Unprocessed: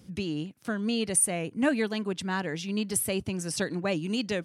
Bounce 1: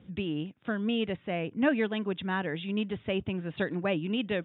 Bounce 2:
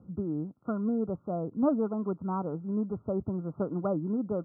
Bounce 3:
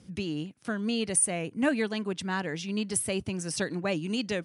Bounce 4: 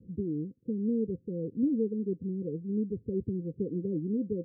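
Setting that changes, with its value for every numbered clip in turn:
Chebyshev low-pass filter, frequency: 3,700, 1,400, 11,000, 520 Hertz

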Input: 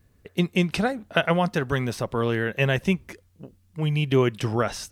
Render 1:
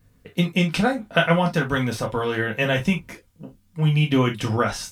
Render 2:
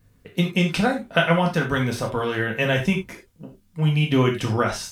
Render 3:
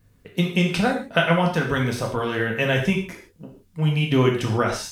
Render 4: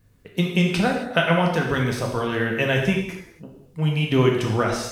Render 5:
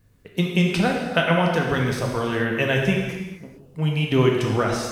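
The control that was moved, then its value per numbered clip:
reverb whose tail is shaped and stops, gate: 80, 120, 180, 300, 470 milliseconds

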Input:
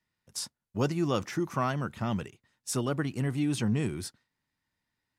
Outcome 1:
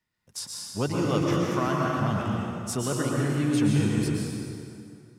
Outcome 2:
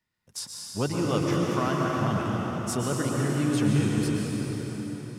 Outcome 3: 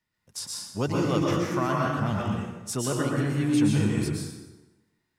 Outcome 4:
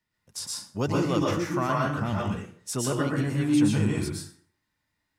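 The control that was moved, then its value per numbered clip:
dense smooth reverb, RT60: 2.5, 5.3, 1.1, 0.5 seconds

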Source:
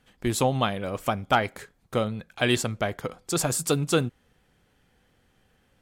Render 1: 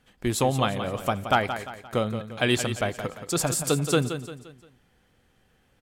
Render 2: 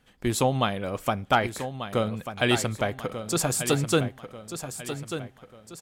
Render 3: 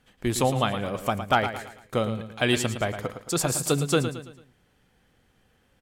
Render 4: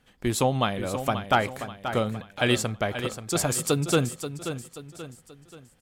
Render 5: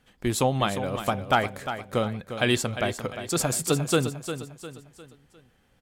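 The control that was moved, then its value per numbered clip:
repeating echo, delay time: 174, 1,190, 111, 532, 353 milliseconds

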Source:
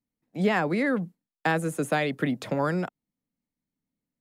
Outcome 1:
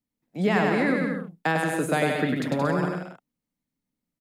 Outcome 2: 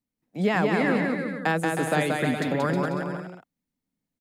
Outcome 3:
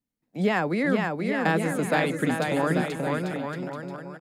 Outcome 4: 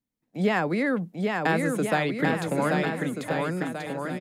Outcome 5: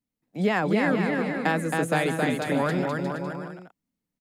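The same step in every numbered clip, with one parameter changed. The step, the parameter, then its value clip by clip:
bouncing-ball delay, first gap: 100, 180, 480, 790, 270 milliseconds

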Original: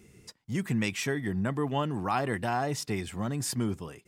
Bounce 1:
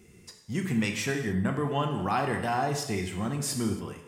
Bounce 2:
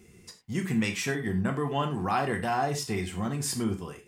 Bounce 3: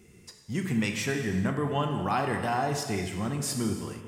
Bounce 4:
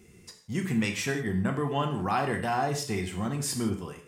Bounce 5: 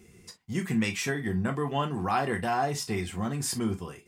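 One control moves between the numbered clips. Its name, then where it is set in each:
reverb whose tail is shaped and stops, gate: 310, 130, 500, 200, 80 milliseconds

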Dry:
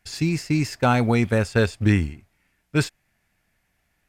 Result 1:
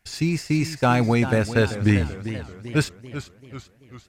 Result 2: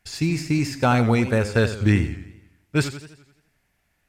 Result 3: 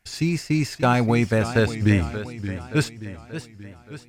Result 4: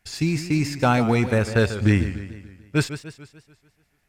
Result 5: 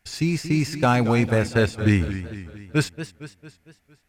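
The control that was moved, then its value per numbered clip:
feedback echo with a swinging delay time, delay time: 390, 85, 578, 146, 227 milliseconds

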